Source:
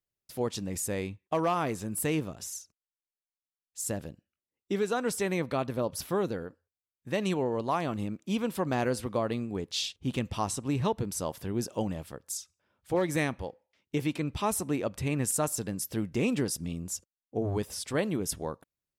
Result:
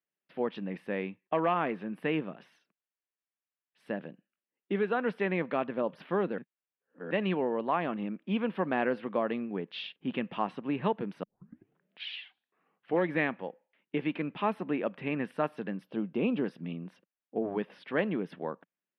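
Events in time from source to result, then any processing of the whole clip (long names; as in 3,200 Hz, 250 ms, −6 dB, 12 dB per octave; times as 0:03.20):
0:06.38–0:07.11: reverse
0:11.23: tape start 1.81 s
0:15.83–0:16.44: parametric band 1,900 Hz −13.5 dB 0.56 octaves
whole clip: elliptic band-pass filter 180–2,900 Hz, stop band 40 dB; parametric band 1,700 Hz +5.5 dB 0.4 octaves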